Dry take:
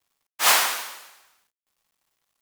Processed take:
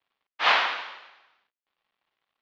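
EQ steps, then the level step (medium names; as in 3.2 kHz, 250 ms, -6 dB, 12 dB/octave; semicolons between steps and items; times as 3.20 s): inverse Chebyshev low-pass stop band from 8.5 kHz, stop band 50 dB; bass shelf 170 Hz -11.5 dB; 0.0 dB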